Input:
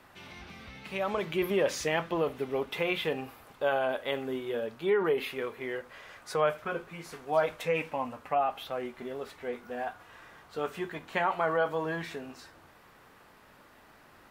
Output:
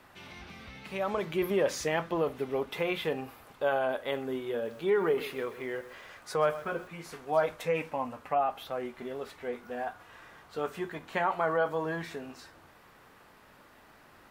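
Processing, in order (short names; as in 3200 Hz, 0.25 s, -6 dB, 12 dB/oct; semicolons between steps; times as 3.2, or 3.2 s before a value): dynamic EQ 2800 Hz, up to -4 dB, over -48 dBFS, Q 1.5; 4.52–6.88 lo-fi delay 0.129 s, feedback 35%, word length 8-bit, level -14.5 dB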